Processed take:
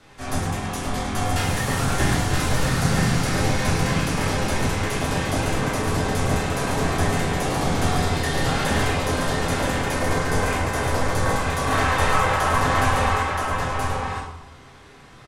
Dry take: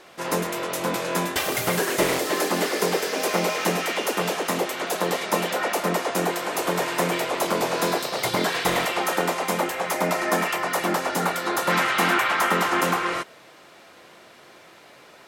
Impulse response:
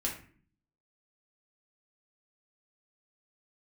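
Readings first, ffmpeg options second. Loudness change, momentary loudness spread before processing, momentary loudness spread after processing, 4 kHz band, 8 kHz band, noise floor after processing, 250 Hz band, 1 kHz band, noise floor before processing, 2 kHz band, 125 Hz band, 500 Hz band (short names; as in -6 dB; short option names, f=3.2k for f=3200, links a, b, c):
+1.0 dB, 5 LU, 6 LU, -0.5 dB, +0.5 dB, -46 dBFS, +3.0 dB, +1.0 dB, -50 dBFS, 0.0 dB, +12.5 dB, -1.5 dB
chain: -filter_complex "[0:a]afreqshift=-270,aecho=1:1:975:0.668[a];[1:a]atrim=start_sample=2205,asetrate=22491,aresample=44100[b];[a][b]afir=irnorm=-1:irlink=0,volume=-8.5dB"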